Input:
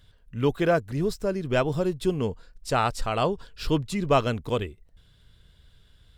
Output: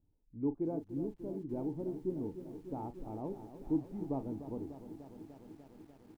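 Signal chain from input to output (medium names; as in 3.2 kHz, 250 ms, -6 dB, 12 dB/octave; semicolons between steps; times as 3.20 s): cascade formant filter u; doubling 37 ms -12.5 dB; bit-crushed delay 297 ms, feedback 80%, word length 10-bit, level -12 dB; trim -3.5 dB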